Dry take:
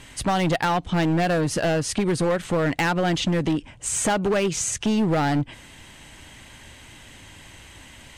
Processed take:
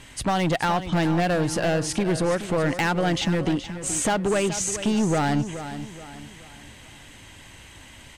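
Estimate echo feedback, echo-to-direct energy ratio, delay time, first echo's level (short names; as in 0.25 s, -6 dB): 40%, -11.0 dB, 0.425 s, -11.5 dB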